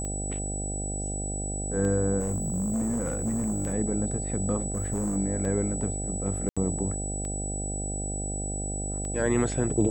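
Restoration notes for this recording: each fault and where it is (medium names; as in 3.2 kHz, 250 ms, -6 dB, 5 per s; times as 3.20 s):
buzz 50 Hz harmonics 16 -33 dBFS
tick 33 1/3 rpm -23 dBFS
whine 7.9 kHz -34 dBFS
2.19–3.74 s: clipped -24.5 dBFS
4.74–5.17 s: clipped -24.5 dBFS
6.49–6.57 s: dropout 76 ms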